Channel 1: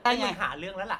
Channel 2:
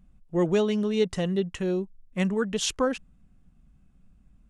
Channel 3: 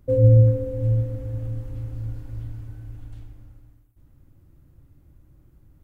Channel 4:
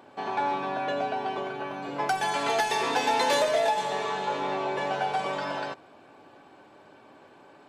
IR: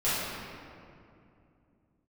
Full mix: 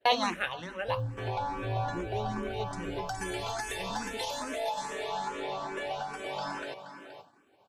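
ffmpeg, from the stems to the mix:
-filter_complex "[0:a]lowshelf=frequency=160:gain=-6.5,volume=2dB,asplit=2[link_01][link_02];[link_02]volume=-23.5dB[link_03];[1:a]adelay=1600,volume=-10dB[link_04];[2:a]acompressor=threshold=-21dB:ratio=6,adelay=800,volume=-8.5dB[link_05];[3:a]acompressor=threshold=-30dB:ratio=6,adelay=1000,volume=0.5dB,asplit=2[link_06][link_07];[link_07]volume=-10.5dB[link_08];[link_04][link_06]amix=inputs=2:normalize=0,highshelf=frequency=6000:gain=9.5,alimiter=limit=-22dB:level=0:latency=1:release=373,volume=0dB[link_09];[link_03][link_08]amix=inputs=2:normalize=0,aecho=0:1:475:1[link_10];[link_01][link_05][link_09][link_10]amix=inputs=4:normalize=0,agate=range=-33dB:threshold=-43dB:ratio=3:detection=peak,asplit=2[link_11][link_12];[link_12]afreqshift=2.4[link_13];[link_11][link_13]amix=inputs=2:normalize=1"

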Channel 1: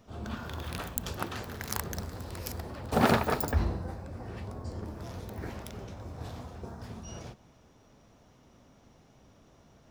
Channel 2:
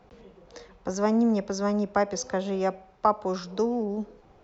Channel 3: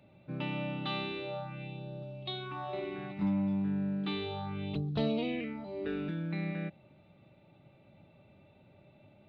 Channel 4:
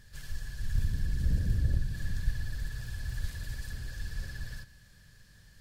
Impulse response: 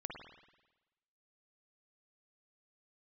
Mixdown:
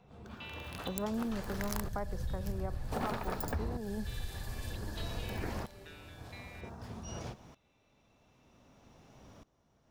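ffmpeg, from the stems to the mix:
-filter_complex "[0:a]acontrast=77,aeval=exprs='val(0)*pow(10,-20*if(lt(mod(-0.53*n/s,1),2*abs(-0.53)/1000),1-mod(-0.53*n/s,1)/(2*abs(-0.53)/1000),(mod(-0.53*n/s,1)-2*abs(-0.53)/1000)/(1-2*abs(-0.53)/1000))/20)':channel_layout=same,volume=-2.5dB[link_01];[1:a]lowpass=2400,equalizer=frequency=140:width=2.1:gain=12,volume=-9dB,asplit=2[link_02][link_03];[2:a]bandpass=frequency=4600:width_type=q:width=0.87:csg=0,volume=-1.5dB[link_04];[3:a]highshelf=frequency=9000:gain=7.5,adelay=1000,volume=-4dB[link_05];[link_03]apad=whole_len=409456[link_06];[link_04][link_06]sidechaincompress=threshold=-42dB:ratio=8:attack=16:release=712[link_07];[link_01][link_02][link_07][link_05]amix=inputs=4:normalize=0,equalizer=frequency=930:width_type=o:width=0.77:gain=2,acompressor=threshold=-32dB:ratio=8"

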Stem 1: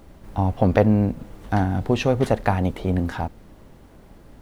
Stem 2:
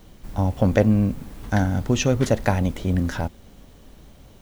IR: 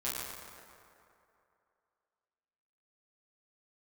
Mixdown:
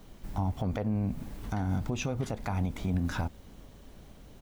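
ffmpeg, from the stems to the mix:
-filter_complex "[0:a]volume=-11dB,asplit=2[link_01][link_02];[1:a]alimiter=limit=-15.5dB:level=0:latency=1,flanger=delay=1.1:depth=6.3:regen=-75:speed=1.5:shape=triangular,adelay=0.4,volume=-0.5dB[link_03];[link_02]apad=whole_len=194797[link_04];[link_03][link_04]sidechaincompress=threshold=-31dB:ratio=8:attack=8.6:release=285[link_05];[link_01][link_05]amix=inputs=2:normalize=0,alimiter=limit=-20.5dB:level=0:latency=1:release=104"

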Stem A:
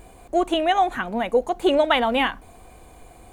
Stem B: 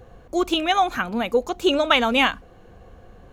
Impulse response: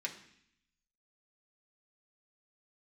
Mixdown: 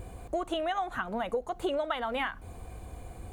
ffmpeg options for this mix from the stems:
-filter_complex "[0:a]equalizer=frequency=80:width_type=o:width=2.4:gain=12,volume=-3.5dB[link_01];[1:a]lowpass=frequency=1900:width=0.5412,lowpass=frequency=1900:width=1.3066,volume=-1,volume=-6.5dB[link_02];[link_01][link_02]amix=inputs=2:normalize=0,acompressor=threshold=-29dB:ratio=5"

